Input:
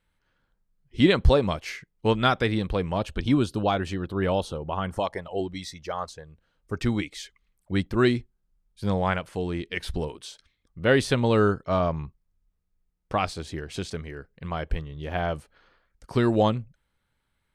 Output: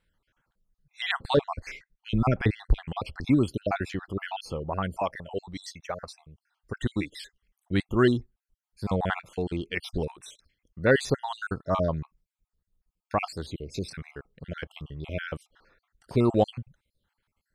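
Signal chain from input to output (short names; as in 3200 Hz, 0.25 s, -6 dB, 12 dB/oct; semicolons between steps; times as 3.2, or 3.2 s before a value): random spectral dropouts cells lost 51%; 1.37–2.83 tilt -2.5 dB/oct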